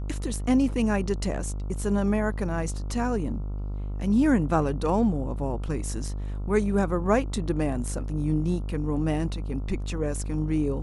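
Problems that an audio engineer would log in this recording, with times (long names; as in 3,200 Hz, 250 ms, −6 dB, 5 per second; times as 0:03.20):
mains buzz 50 Hz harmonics 28 −31 dBFS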